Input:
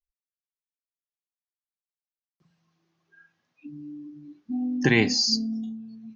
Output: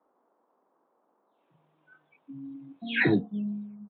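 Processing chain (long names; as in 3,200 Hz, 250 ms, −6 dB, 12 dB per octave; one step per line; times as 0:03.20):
every frequency bin delayed by itself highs early, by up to 730 ms
high-pass filter 150 Hz 6 dB per octave
speed change −7%
noise in a band 230–1,100 Hz −74 dBFS
tempo change 1.7×
downsampling to 8,000 Hz
level +2.5 dB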